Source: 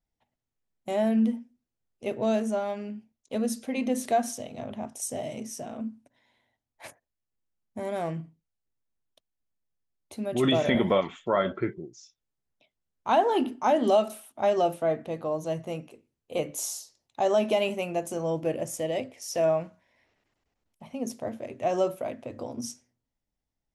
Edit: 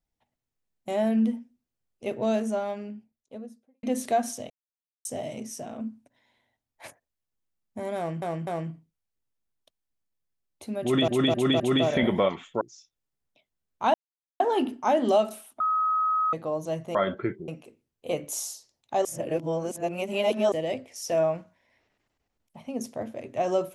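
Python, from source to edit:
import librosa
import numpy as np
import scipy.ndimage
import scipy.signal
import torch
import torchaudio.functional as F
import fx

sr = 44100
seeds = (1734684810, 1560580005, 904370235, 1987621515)

y = fx.studio_fade_out(x, sr, start_s=2.57, length_s=1.26)
y = fx.edit(y, sr, fx.silence(start_s=4.5, length_s=0.55),
    fx.repeat(start_s=7.97, length_s=0.25, count=3),
    fx.repeat(start_s=10.32, length_s=0.26, count=4),
    fx.move(start_s=11.33, length_s=0.53, to_s=15.74),
    fx.insert_silence(at_s=13.19, length_s=0.46),
    fx.bleep(start_s=14.39, length_s=0.73, hz=1270.0, db=-21.5),
    fx.reverse_span(start_s=17.31, length_s=1.47), tone=tone)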